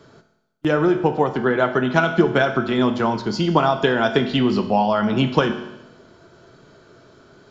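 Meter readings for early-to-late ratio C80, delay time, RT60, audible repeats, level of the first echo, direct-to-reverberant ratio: 12.0 dB, no echo audible, 0.95 s, no echo audible, no echo audible, 7.0 dB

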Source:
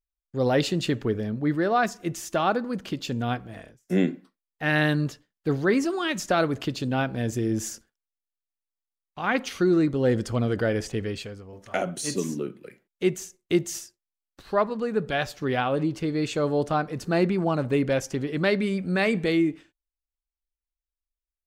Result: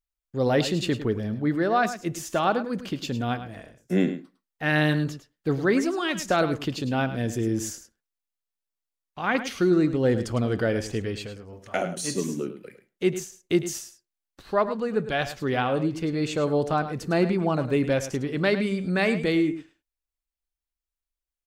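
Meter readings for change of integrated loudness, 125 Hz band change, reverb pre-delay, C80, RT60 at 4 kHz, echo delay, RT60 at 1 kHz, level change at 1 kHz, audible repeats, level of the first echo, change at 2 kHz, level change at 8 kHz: 0.0 dB, 0.0 dB, no reverb audible, no reverb audible, no reverb audible, 105 ms, no reverb audible, +0.5 dB, 1, −12.0 dB, 0.0 dB, +0.5 dB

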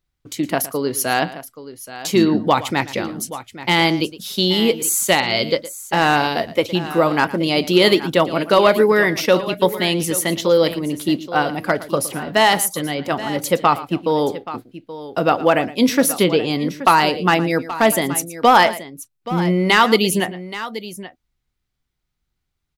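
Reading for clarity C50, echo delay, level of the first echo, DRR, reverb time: no reverb audible, 114 ms, −16.5 dB, no reverb audible, no reverb audible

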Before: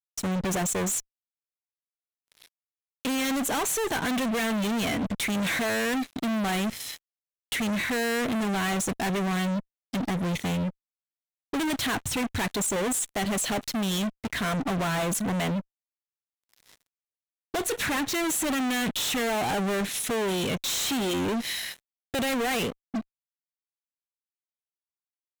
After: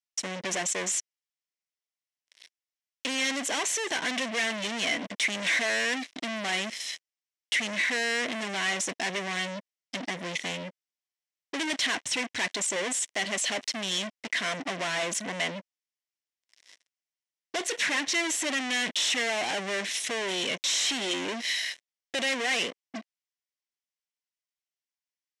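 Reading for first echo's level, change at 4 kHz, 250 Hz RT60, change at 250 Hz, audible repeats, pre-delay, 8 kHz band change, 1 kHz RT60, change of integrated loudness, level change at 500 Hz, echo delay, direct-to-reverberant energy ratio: no echo audible, +3.0 dB, no reverb audible, −9.5 dB, no echo audible, no reverb audible, 0.0 dB, no reverb audible, −1.0 dB, −4.0 dB, no echo audible, no reverb audible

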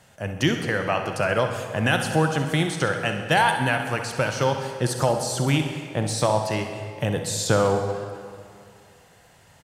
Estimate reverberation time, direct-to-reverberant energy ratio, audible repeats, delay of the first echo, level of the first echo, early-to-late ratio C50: 2.4 s, 5.0 dB, 2, 65 ms, −11.0 dB, 5.5 dB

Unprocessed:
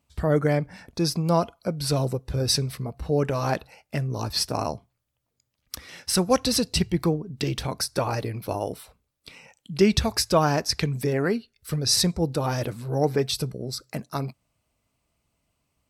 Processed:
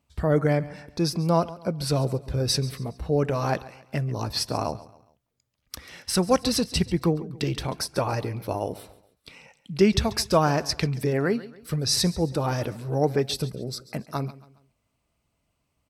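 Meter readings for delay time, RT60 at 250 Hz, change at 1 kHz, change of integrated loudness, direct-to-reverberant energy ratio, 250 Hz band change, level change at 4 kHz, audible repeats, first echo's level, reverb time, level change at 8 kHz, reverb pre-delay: 138 ms, no reverb audible, 0.0 dB, −0.5 dB, no reverb audible, 0.0 dB, −2.0 dB, 3, −18.0 dB, no reverb audible, −3.0 dB, no reverb audible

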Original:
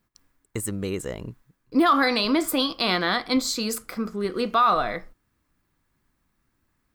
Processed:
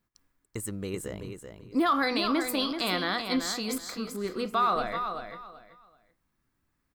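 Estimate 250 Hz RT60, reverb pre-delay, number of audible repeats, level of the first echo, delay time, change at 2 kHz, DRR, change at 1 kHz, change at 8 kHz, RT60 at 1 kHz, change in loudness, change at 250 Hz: no reverb audible, no reverb audible, 3, −7.5 dB, 383 ms, −5.0 dB, no reverb audible, −5.5 dB, −5.5 dB, no reverb audible, −5.5 dB, −5.5 dB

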